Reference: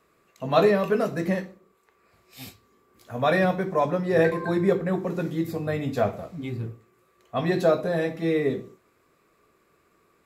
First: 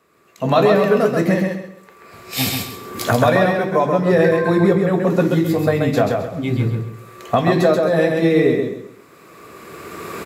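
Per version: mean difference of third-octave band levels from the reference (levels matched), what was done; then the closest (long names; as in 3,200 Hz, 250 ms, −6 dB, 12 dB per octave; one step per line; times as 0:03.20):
5.0 dB: camcorder AGC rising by 16 dB per second
high-pass filter 85 Hz
on a send: repeating echo 133 ms, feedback 29%, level −4 dB
on the sum: level +4 dB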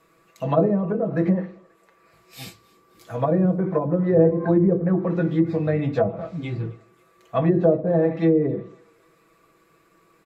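6.5 dB: treble cut that deepens with the level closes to 480 Hz, closed at −19 dBFS
comb filter 6.1 ms
feedback echo with a high-pass in the loop 267 ms, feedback 60%, high-pass 690 Hz, level −24 dB
level +3 dB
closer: first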